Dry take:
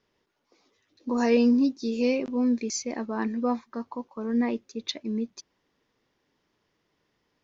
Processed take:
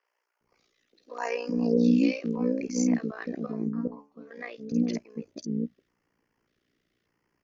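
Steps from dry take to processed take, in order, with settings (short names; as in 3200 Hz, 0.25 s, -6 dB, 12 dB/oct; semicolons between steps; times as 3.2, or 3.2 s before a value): AM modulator 59 Hz, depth 70%; 3.46–4.31 metallic resonator 70 Hz, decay 0.33 s, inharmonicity 0.002; LFO notch square 0.85 Hz 920–3700 Hz; three bands offset in time mids, highs, lows 50/410 ms, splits 550/5300 Hz; gain +3.5 dB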